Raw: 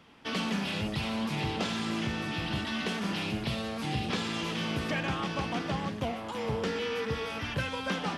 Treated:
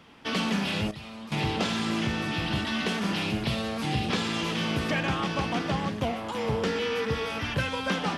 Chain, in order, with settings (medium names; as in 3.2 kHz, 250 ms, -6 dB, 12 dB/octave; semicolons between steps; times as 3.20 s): 0.91–1.32 s: feedback comb 610 Hz, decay 0.34 s, mix 80%; trim +4 dB